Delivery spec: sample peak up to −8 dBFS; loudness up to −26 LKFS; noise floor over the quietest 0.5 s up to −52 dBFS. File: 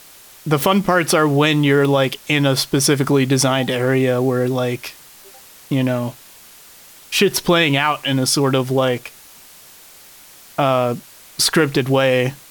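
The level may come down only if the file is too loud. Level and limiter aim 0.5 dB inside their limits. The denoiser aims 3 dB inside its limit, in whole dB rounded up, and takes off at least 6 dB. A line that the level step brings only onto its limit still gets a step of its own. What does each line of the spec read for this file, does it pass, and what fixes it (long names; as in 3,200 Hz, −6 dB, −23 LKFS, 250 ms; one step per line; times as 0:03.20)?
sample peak −4.0 dBFS: out of spec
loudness −17.0 LKFS: out of spec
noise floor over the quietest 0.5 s −44 dBFS: out of spec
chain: level −9.5 dB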